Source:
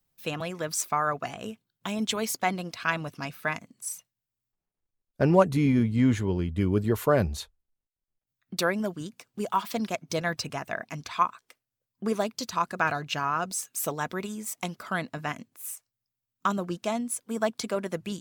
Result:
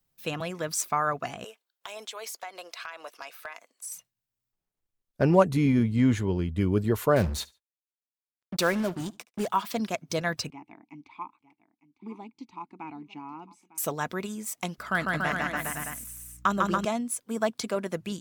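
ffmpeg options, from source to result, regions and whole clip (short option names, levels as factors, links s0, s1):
-filter_complex "[0:a]asettb=1/sr,asplit=3[s0][s1][s2];[s0]atrim=end=1.444[s3];[s1]atrim=start=1.44:end=3.92,asetpts=PTS-STARTPTS,afade=t=in:d=0.004:c=qsin,afade=t=out:st=2.476:d=0.004:c=qsin,highpass=f=490:w=0.5412,highpass=f=490:w=1.3066,acompressor=threshold=0.02:ratio=10:attack=3.2:release=140:knee=1:detection=peak,asoftclip=type=hard:threshold=0.0447[s4];[s2]atrim=start=3.916[s5];[s3][s4]acrossfade=d=0.004:c1=hsin:c2=qsin[s6];[s6][s5]acrossfade=d=0.004:c1=qsin:c2=hsin,asettb=1/sr,asplit=3[s7][s8][s9];[s7]atrim=end=7.164[s10];[s8]atrim=start=7.16:end=9.48,asetpts=PTS-STARTPTS,afade=t=in:d=0.004:c=qsin,afade=t=out:st=2.316:d=0.004:c=qsin,aeval=exprs='val(0)+0.5*0.015*sgn(val(0))':c=same,acrusher=bits=5:mix=0:aa=0.5,aecho=1:1:72|144:0.0708|0.0177,atrim=end_sample=102312[s11];[s9]atrim=start=9.476[s12];[s10][s11]acrossfade=d=0.004:c1=hsin:c2=qsin[s13];[s13][s12]acrossfade=d=0.004:c1=qsin:c2=hsin,asettb=1/sr,asplit=3[s14][s15][s16];[s14]atrim=end=10.504[s17];[s15]atrim=start=10.5:end=13.78,asetpts=PTS-STARTPTS,afade=t=in:d=0.004:c=qsin,afade=t=out:st=3.276:d=0.004:c=qsin,asplit=3[s18][s19][s20];[s18]bandpass=f=300:t=q:w=8,volume=1[s21];[s19]bandpass=f=870:t=q:w=8,volume=0.501[s22];[s20]bandpass=f=2240:t=q:w=8,volume=0.355[s23];[s21][s22][s23]amix=inputs=3:normalize=0,lowshelf=f=170:g=7.5,aecho=1:1:903:0.133,atrim=end_sample=144648[s24];[s16]atrim=start=13.776[s25];[s17][s24]acrossfade=d=0.004:c1=hsin:c2=qsin[s26];[s26][s25]acrossfade=d=0.004:c1=qsin:c2=hsin,asettb=1/sr,asplit=3[s27][s28][s29];[s27]atrim=end=14.784[s30];[s28]atrim=start=14.78:end=16.85,asetpts=PTS-STARTPTS,afade=t=in:d=0.004:c=qsin,afade=t=out:st=2.066:d=0.004:c=qsin,equalizer=f=1700:w=2.3:g=5,aeval=exprs='val(0)+0.00126*(sin(2*PI*60*n/s)+sin(2*PI*2*60*n/s)/2+sin(2*PI*3*60*n/s)/3+sin(2*PI*4*60*n/s)/4+sin(2*PI*5*60*n/s)/5)':c=same,aecho=1:1:150|285|406.5|515.8|614.3:0.794|0.631|0.501|0.398|0.316,atrim=end_sample=91287[s31];[s29]atrim=start=16.846[s32];[s30][s31]acrossfade=d=0.004:c1=hsin:c2=qsin[s33];[s33][s32]acrossfade=d=0.004:c1=qsin:c2=hsin"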